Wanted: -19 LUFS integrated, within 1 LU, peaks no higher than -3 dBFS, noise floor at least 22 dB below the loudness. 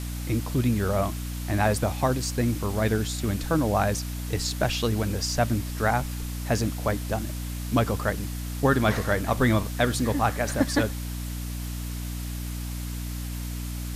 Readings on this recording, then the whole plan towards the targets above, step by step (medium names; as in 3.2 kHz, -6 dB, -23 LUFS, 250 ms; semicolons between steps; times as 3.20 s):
hum 60 Hz; highest harmonic 300 Hz; hum level -30 dBFS; noise floor -33 dBFS; noise floor target -49 dBFS; loudness -27.0 LUFS; peak level -9.0 dBFS; loudness target -19.0 LUFS
-> de-hum 60 Hz, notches 5; noise reduction 16 dB, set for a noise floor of -33 dBFS; trim +8 dB; peak limiter -3 dBFS